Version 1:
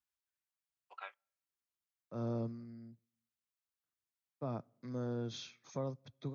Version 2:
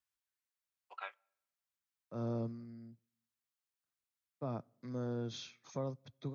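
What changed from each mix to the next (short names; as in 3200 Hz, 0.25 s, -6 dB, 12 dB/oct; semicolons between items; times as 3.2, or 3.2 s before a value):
first voice: send +11.5 dB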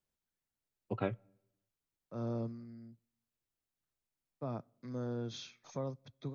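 first voice: remove HPF 950 Hz 24 dB/oct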